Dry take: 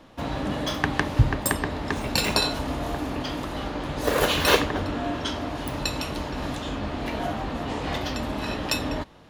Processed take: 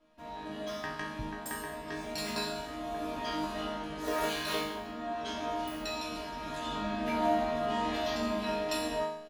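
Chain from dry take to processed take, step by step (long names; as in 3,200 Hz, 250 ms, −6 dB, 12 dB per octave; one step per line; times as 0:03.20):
comb filter 3.1 ms, depth 52%
automatic gain control gain up to 12 dB
resonators tuned to a chord D#3 sus4, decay 0.83 s
level +4 dB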